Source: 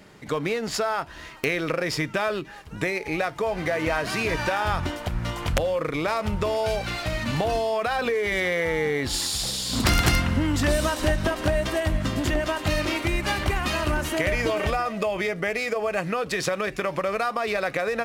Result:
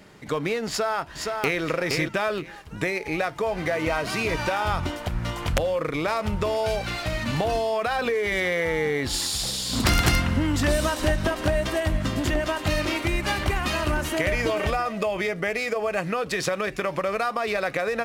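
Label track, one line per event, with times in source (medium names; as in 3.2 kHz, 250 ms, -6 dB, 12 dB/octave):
0.680000	1.610000	echo throw 470 ms, feedback 15%, level -4 dB
3.750000	4.940000	band-stop 1.7 kHz, Q 8.5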